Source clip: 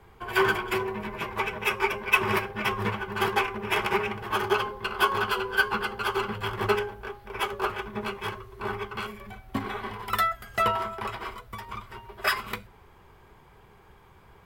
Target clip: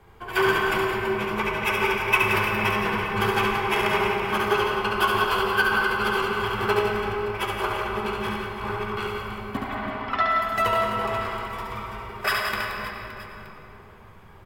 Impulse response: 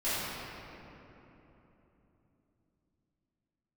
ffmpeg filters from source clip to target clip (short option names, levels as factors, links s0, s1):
-filter_complex "[0:a]asplit=3[s0][s1][s2];[s0]afade=t=out:st=9.56:d=0.02[s3];[s1]highpass=410,equalizer=f=430:t=q:w=4:g=-7,equalizer=f=640:t=q:w=4:g=8,equalizer=f=3800:t=q:w=4:g=-6,lowpass=f=4500:w=0.5412,lowpass=f=4500:w=1.3066,afade=t=in:st=9.56:d=0.02,afade=t=out:st=10.28:d=0.02[s4];[s2]afade=t=in:st=10.28:d=0.02[s5];[s3][s4][s5]amix=inputs=3:normalize=0,aecho=1:1:70|175|332.5|568.8|923.1:0.631|0.398|0.251|0.158|0.1,asplit=2[s6][s7];[1:a]atrim=start_sample=2205,adelay=89[s8];[s7][s8]afir=irnorm=-1:irlink=0,volume=0.251[s9];[s6][s9]amix=inputs=2:normalize=0"